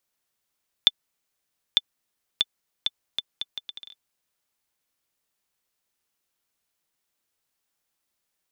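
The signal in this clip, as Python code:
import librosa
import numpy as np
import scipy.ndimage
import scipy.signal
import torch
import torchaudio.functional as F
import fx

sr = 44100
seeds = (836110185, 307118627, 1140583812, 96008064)

y = fx.bouncing_ball(sr, first_gap_s=0.9, ratio=0.71, hz=3520.0, decay_ms=35.0, level_db=-2.0)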